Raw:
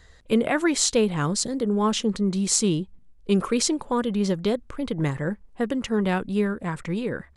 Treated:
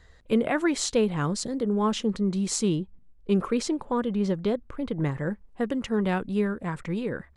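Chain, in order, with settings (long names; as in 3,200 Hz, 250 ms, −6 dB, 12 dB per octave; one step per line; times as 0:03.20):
high-shelf EQ 3,700 Hz −7 dB, from 0:02.76 −12 dB, from 0:05.17 −5 dB
level −2 dB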